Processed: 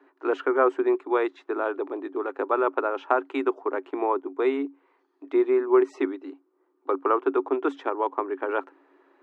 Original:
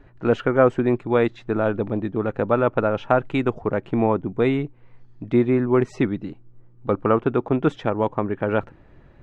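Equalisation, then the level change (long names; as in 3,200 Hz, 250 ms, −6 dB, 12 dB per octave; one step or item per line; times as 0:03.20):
Chebyshev high-pass with heavy ripple 270 Hz, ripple 9 dB
+1.5 dB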